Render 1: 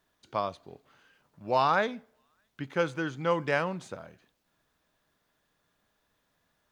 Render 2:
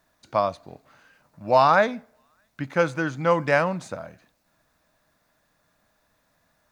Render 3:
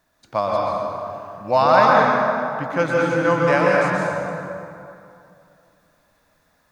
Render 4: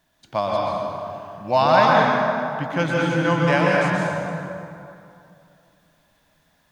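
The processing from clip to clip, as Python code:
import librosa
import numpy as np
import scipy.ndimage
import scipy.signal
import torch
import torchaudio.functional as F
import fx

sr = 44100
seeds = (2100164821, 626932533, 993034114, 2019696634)

y1 = fx.graphic_eq_31(x, sr, hz=(400, 630, 3150), db=(-8, 4, -8))
y1 = F.gain(torch.from_numpy(y1), 7.0).numpy()
y2 = fx.rev_plate(y1, sr, seeds[0], rt60_s=2.6, hf_ratio=0.6, predelay_ms=110, drr_db=-4.0)
y3 = fx.graphic_eq_31(y2, sr, hz=(160, 500, 1250, 3150), db=(5, -5, -6, 8))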